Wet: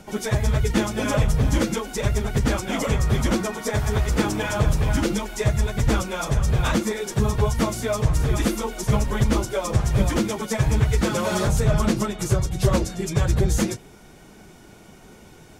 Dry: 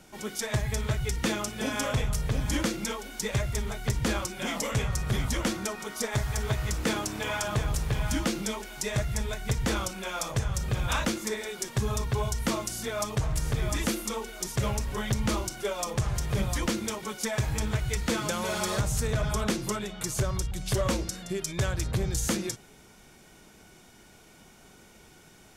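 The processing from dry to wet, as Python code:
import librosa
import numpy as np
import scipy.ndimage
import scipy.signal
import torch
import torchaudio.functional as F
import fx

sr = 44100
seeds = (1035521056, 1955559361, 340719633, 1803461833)

y = fx.tilt_shelf(x, sr, db=3.5, hz=1200.0)
y = fx.stretch_vocoder_free(y, sr, factor=0.61)
y = y * 10.0 ** (9.0 / 20.0)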